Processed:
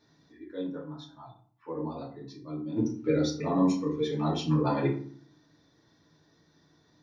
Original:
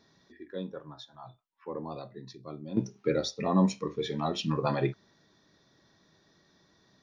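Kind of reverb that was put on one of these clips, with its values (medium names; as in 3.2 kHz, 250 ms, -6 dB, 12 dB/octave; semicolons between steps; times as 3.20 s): FDN reverb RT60 0.47 s, low-frequency decay 1.55×, high-frequency decay 0.6×, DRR -4 dB; trim -6 dB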